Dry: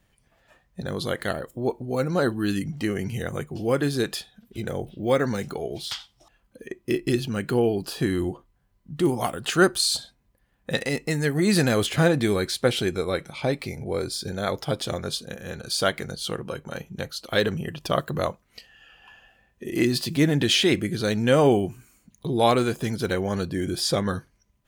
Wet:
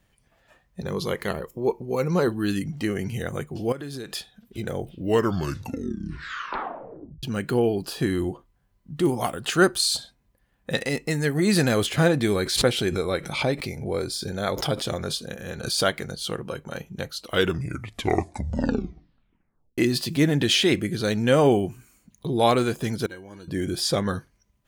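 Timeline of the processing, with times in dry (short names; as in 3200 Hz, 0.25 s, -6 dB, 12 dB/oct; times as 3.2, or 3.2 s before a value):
0.81–2.28 ripple EQ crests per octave 0.8, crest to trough 8 dB
3.72–4.15 compressor 16:1, threshold -30 dBFS
4.8 tape stop 2.43 s
12.34–15.9 backwards sustainer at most 71 dB/s
17.15 tape stop 2.63 s
23.06–23.48 resonator 320 Hz, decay 0.2 s, harmonics odd, mix 90%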